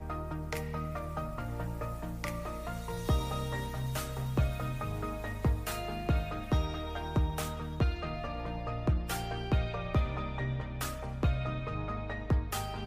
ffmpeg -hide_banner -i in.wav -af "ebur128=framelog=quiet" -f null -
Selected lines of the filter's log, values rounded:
Integrated loudness:
  I:         -34.9 LUFS
  Threshold: -44.9 LUFS
Loudness range:
  LRA:         2.6 LU
  Threshold: -54.7 LUFS
  LRA low:   -36.6 LUFS
  LRA high:  -34.0 LUFS